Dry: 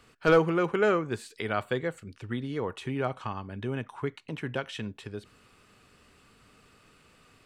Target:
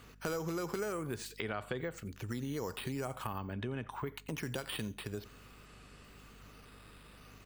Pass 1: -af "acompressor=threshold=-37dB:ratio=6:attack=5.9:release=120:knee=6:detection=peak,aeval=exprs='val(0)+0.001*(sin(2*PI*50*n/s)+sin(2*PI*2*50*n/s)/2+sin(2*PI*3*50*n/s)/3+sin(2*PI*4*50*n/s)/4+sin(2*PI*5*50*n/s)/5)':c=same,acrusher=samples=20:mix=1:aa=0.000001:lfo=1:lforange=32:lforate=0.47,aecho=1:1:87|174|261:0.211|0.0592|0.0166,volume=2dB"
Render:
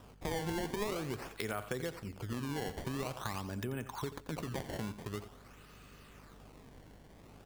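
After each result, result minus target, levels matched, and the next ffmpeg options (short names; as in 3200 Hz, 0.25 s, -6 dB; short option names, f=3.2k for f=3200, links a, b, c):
decimation with a swept rate: distortion +10 dB; echo-to-direct +9 dB
-af "acompressor=threshold=-37dB:ratio=6:attack=5.9:release=120:knee=6:detection=peak,aeval=exprs='val(0)+0.001*(sin(2*PI*50*n/s)+sin(2*PI*2*50*n/s)/2+sin(2*PI*3*50*n/s)/3+sin(2*PI*4*50*n/s)/4+sin(2*PI*5*50*n/s)/5)':c=same,acrusher=samples=4:mix=1:aa=0.000001:lfo=1:lforange=6.4:lforate=0.47,aecho=1:1:87|174|261:0.211|0.0592|0.0166,volume=2dB"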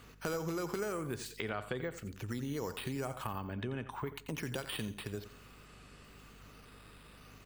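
echo-to-direct +9 dB
-af "acompressor=threshold=-37dB:ratio=6:attack=5.9:release=120:knee=6:detection=peak,aeval=exprs='val(0)+0.001*(sin(2*PI*50*n/s)+sin(2*PI*2*50*n/s)/2+sin(2*PI*3*50*n/s)/3+sin(2*PI*4*50*n/s)/4+sin(2*PI*5*50*n/s)/5)':c=same,acrusher=samples=4:mix=1:aa=0.000001:lfo=1:lforange=6.4:lforate=0.47,aecho=1:1:87|174:0.075|0.021,volume=2dB"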